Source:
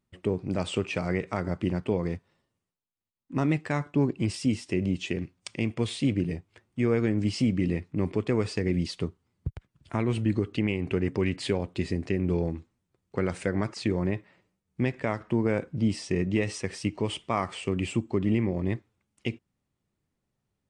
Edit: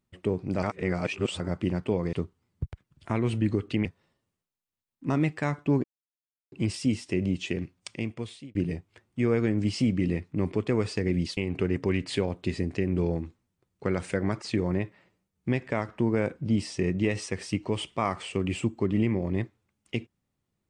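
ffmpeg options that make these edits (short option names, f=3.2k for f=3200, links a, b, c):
-filter_complex "[0:a]asplit=8[a][b][c][d][e][f][g][h];[a]atrim=end=0.632[i];[b]atrim=start=0.628:end=1.402,asetpts=PTS-STARTPTS,areverse[j];[c]atrim=start=1.398:end=2.132[k];[d]atrim=start=8.968:end=10.692[l];[e]atrim=start=2.128:end=4.12,asetpts=PTS-STARTPTS,afade=t=out:st=1.988:d=0.004:c=hsin,apad=pad_dur=0.68[m];[f]atrim=start=4.12:end=6.15,asetpts=PTS-STARTPTS,afade=t=in:d=0.004:c=hsin,afade=t=out:st=1.26:d=0.77[n];[g]atrim=start=6.15:end=8.972,asetpts=PTS-STARTPTS,afade=t=in:d=0.004:c=hsin[o];[h]atrim=start=10.688[p];[i][j]acrossfade=d=0.004:c1=hsin:c2=hsin[q];[q][k]acrossfade=d=0.004:c1=hsin:c2=hsin[r];[r][l]acrossfade=d=0.004:c1=hsin:c2=hsin[s];[m][n][o]concat=n=3:v=0:a=1[t];[s][t]acrossfade=d=0.004:c1=hsin:c2=hsin[u];[u][p]acrossfade=d=0.004:c1=hsin:c2=hsin"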